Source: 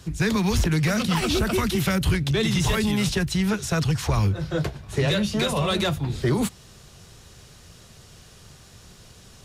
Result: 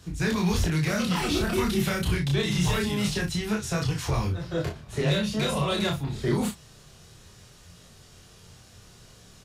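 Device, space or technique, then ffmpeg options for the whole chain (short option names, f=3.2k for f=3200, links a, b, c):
double-tracked vocal: -filter_complex "[0:a]asplit=2[a][b];[b]adelay=34,volume=-6dB[c];[a][c]amix=inputs=2:normalize=0,flanger=delay=22.5:depth=6.8:speed=0.25,volume=-1dB"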